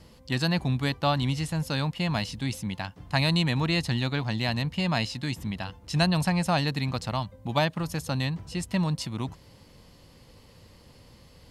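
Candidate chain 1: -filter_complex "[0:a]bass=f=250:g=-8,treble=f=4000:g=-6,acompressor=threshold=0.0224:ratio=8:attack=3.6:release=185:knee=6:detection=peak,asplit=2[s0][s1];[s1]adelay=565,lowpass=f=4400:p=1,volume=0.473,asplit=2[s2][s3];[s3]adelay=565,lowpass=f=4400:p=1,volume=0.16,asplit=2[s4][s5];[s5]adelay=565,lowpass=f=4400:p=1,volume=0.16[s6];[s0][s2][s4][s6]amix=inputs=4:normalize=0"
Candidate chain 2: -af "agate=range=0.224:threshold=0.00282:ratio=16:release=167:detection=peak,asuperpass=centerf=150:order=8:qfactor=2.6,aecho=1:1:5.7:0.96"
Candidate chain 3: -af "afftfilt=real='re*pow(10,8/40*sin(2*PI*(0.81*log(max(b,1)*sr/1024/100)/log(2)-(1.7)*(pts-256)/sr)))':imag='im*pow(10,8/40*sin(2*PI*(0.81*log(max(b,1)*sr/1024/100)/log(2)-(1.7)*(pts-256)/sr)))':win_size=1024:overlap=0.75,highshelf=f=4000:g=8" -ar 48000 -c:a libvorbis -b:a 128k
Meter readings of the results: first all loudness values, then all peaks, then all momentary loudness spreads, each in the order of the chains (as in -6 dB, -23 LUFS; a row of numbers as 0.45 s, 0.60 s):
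-38.5 LUFS, -27.0 LUFS, -26.0 LUFS; -21.0 dBFS, -15.0 dBFS, -7.0 dBFS; 19 LU, 14 LU, 8 LU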